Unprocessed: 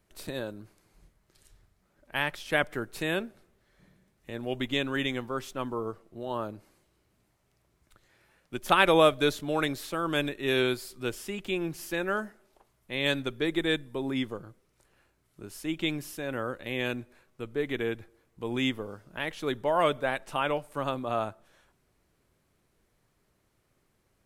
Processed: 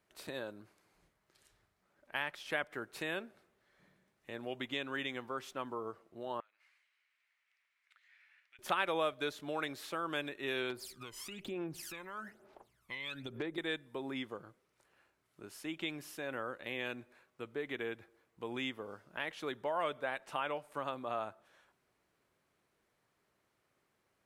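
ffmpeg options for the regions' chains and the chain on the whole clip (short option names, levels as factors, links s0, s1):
-filter_complex "[0:a]asettb=1/sr,asplit=3[s0][s1][s2];[s0]atrim=end=6.404[s3];[s1]atrim=start=6.4:end=8.59,asetpts=PTS-STARTPTS,afade=t=in:d=0.004:c=qsin,afade=t=out:st=2.186:d=0.004:c=qsin,acompressor=threshold=0.00447:ratio=10:attack=3.2:release=140:knee=1:detection=peak,highpass=f=2100:t=q:w=2.5,aemphasis=mode=reproduction:type=50fm[s4];[s2]atrim=start=8.586[s5];[s3][s4]acrossfade=d=0.004:c1=hsin:c2=qsin[s6];[s6][s5]acrossfade=d=0.004:c1=qsin:c2=hsin,asettb=1/sr,asplit=3[s7][s8][s9];[s7]atrim=end=10.704[s10];[s8]atrim=start=10.7:end=13.58,asetpts=PTS-STARTPTS,afade=t=in:d=0.004:c=qsin,afade=t=out:st=2.876:d=0.004:c=qsin,acompressor=threshold=0.0126:ratio=5:attack=3.2:release=140:knee=1:detection=peak,aphaser=in_gain=1:out_gain=1:delay=1:decay=0.76:speed=1.1:type=sinusoidal,aeval=exprs='0.1*(abs(mod(val(0)/0.1+3,4)-2)-1)':c=same[s11];[s9]atrim=start=13.576[s12];[s10][s11]acrossfade=d=0.004:c1=hsin:c2=qsin[s13];[s13][s12]acrossfade=d=0.004:c1=qsin:c2=hsin,highpass=f=130:p=1,acompressor=threshold=0.0224:ratio=2,equalizer=f=1400:w=0.31:g=7,volume=0.355"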